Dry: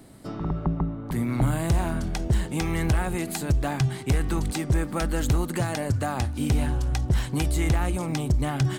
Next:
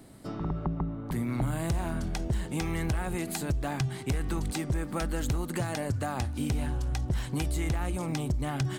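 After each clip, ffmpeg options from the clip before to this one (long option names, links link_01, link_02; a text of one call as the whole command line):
ffmpeg -i in.wav -af "acompressor=threshold=-25dB:ratio=2.5,volume=-2.5dB" out.wav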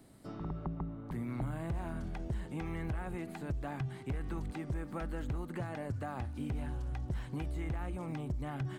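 ffmpeg -i in.wav -filter_complex "[0:a]acrossover=split=2700[link_01][link_02];[link_02]acompressor=threshold=-55dB:ratio=4:attack=1:release=60[link_03];[link_01][link_03]amix=inputs=2:normalize=0,volume=-7.5dB" out.wav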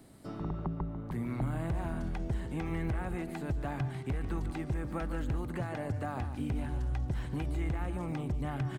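ffmpeg -i in.wav -filter_complex "[0:a]asplit=2[link_01][link_02];[link_02]adelay=145.8,volume=-10dB,highshelf=frequency=4000:gain=-3.28[link_03];[link_01][link_03]amix=inputs=2:normalize=0,volume=3dB" out.wav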